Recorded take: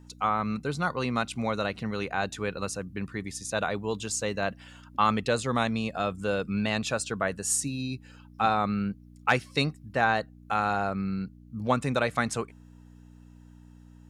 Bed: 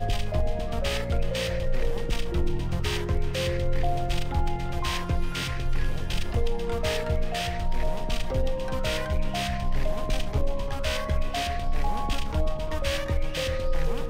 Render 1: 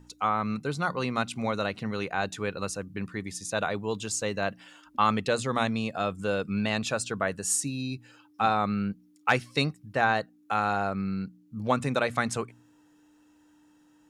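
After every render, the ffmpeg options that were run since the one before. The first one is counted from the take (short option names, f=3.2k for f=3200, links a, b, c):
-af "bandreject=f=60:t=h:w=4,bandreject=f=120:t=h:w=4,bandreject=f=180:t=h:w=4,bandreject=f=240:t=h:w=4"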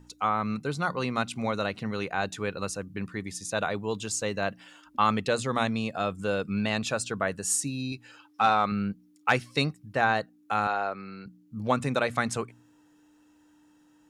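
-filter_complex "[0:a]asettb=1/sr,asplit=3[a][b][c];[a]atrim=end=7.924[d];[b]atrim=start=7.92:end=8.72,asetpts=PTS-STARTPTS,afade=t=in:d=0.004:c=qsin,afade=t=out:st=0.796:d=0.004:c=qsin,asplit=2[e][f];[f]highpass=f=720:p=1,volume=9dB,asoftclip=type=tanh:threshold=-10.5dB[g];[e][g]amix=inputs=2:normalize=0,lowpass=f=6.5k:p=1,volume=-6dB[h];[c]atrim=start=8.716[i];[d][h]acrossfade=d=0.004:c1=hsin:c2=qsin[j];[j][i]acrossfade=d=0.004:c1=qsin:c2=hsin,asettb=1/sr,asplit=3[k][l][m];[k]atrim=end=10.674[n];[l]atrim=start=10.67:end=11.26,asetpts=PTS-STARTPTS,afade=t=in:d=0.004:c=qsin,afade=t=out:st=0.586:d=0.004:c=qsin,acrossover=split=330 6000:gain=0.141 1 0.0708[o][p][q];[o][p][q]amix=inputs=3:normalize=0[r];[m]atrim=start=11.256[s];[n][r]acrossfade=d=0.004:c1=hsin:c2=qsin[t];[t][s]acrossfade=d=0.004:c1=qsin:c2=hsin"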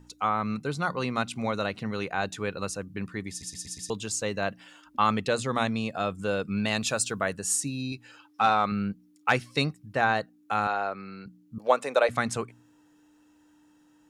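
-filter_complex "[0:a]asettb=1/sr,asplit=3[a][b][c];[a]atrim=end=6.654[d];[b]atrim=start=6.65:end=7.33,asetpts=PTS-STARTPTS,afade=t=in:d=0.004:c=qsin,afade=t=out:st=0.676:d=0.004:c=qsin,aemphasis=mode=production:type=cd[e];[c]atrim=start=7.326[f];[d][e]acrossfade=d=0.004:c1=hsin:c2=qsin[g];[g][f]acrossfade=d=0.004:c1=qsin:c2=hsin,asettb=1/sr,asplit=3[h][i][j];[h]atrim=end=11.584[k];[i]atrim=start=11.58:end=12.09,asetpts=PTS-STARTPTS,afade=t=in:d=0.004:c=qsin,afade=t=out:st=0.506:d=0.004:c=qsin,highpass=f=540:t=q:w=2.1[l];[j]atrim=start=12.086[m];[k][l]acrossfade=d=0.004:c1=hsin:c2=qsin[n];[n][m]acrossfade=d=0.004:c1=qsin:c2=hsin,asplit=6[o][p][q][r][s][t];[o]atrim=end=3.422[u];[p]atrim=start=3.298:end=3.422[v];[q]atrim=start=3.298:end=3.422[w];[r]atrim=start=3.298:end=3.422[x];[s]atrim=start=3.298:end=3.422[y];[t]atrim=start=3.898[z];[u][v]acrossfade=d=0.004:c1=hsin:c2=hsin[aa];[aa][w]acrossfade=d=0.004:c1=hsin:c2=hsin[ab];[ab][x]acrossfade=d=0.004:c1=hsin:c2=hsin[ac];[ac][y]acrossfade=d=0.004:c1=hsin:c2=hsin[ad];[ad][z]acrossfade=d=0.004:c1=hsin:c2=hsin"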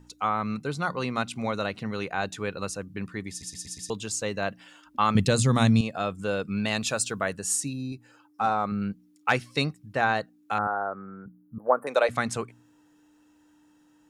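-filter_complex "[0:a]asettb=1/sr,asplit=3[a][b][c];[a]atrim=end=5.154[d];[b]atrim=start=5.15:end=5.81,asetpts=PTS-STARTPTS,afade=t=in:d=0.004:c=qsin,afade=t=out:st=0.656:d=0.004:c=qsin,bass=f=250:g=15,treble=f=4k:g=10[e];[c]atrim=start=5.806[f];[d][e]acrossfade=d=0.004:c1=hsin:c2=qsin[g];[g][f]acrossfade=d=0.004:c1=qsin:c2=hsin,asettb=1/sr,asplit=3[h][i][j];[h]atrim=end=7.734[k];[i]atrim=start=7.73:end=8.82,asetpts=PTS-STARTPTS,afade=t=in:d=0.004:c=qsin,afade=t=out:st=1.086:d=0.004:c=qsin,equalizer=f=3.1k:t=o:w=1.9:g=-11.5[l];[j]atrim=start=8.816[m];[k][l]acrossfade=d=0.004:c1=hsin:c2=qsin[n];[n][m]acrossfade=d=0.004:c1=qsin:c2=hsin,asettb=1/sr,asplit=3[o][p][q];[o]atrim=end=10.584[r];[p]atrim=start=10.58:end=11.87,asetpts=PTS-STARTPTS,afade=t=in:d=0.004:c=qsin,afade=t=out:st=1.286:d=0.004:c=qsin,asuperstop=centerf=4400:order=12:qfactor=0.51[s];[q]atrim=start=11.866[t];[r][s]acrossfade=d=0.004:c1=hsin:c2=qsin[u];[u][t]acrossfade=d=0.004:c1=qsin:c2=hsin"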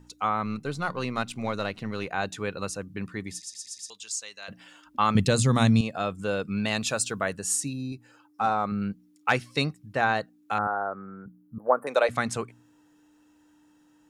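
-filter_complex "[0:a]asettb=1/sr,asplit=3[a][b][c];[a]atrim=end=0.454[d];[b]atrim=start=0.45:end=2.07,asetpts=PTS-STARTPTS,afade=t=in:d=0.004:c=qsin,afade=t=out:st=1.616:d=0.004:c=qsin,aeval=exprs='if(lt(val(0),0),0.708*val(0),val(0))':c=same[e];[c]atrim=start=2.066[f];[d][e]acrossfade=d=0.004:c1=hsin:c2=qsin[g];[g][f]acrossfade=d=0.004:c1=qsin:c2=hsin,asplit=3[h][i][j];[h]afade=t=out:st=3.39:d=0.02[k];[i]bandpass=f=5.9k:t=q:w=0.86,afade=t=in:st=3.39:d=0.02,afade=t=out:st=4.48:d=0.02[l];[j]afade=t=in:st=4.48:d=0.02[m];[k][l][m]amix=inputs=3:normalize=0"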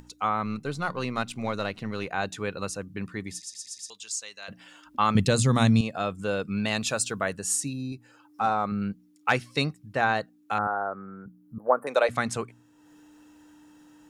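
-af "acompressor=mode=upward:threshold=-46dB:ratio=2.5"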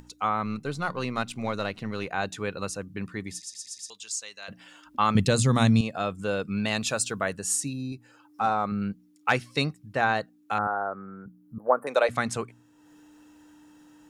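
-af anull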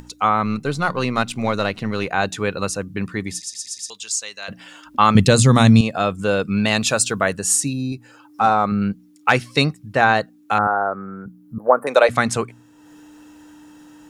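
-af "volume=9dB,alimiter=limit=-1dB:level=0:latency=1"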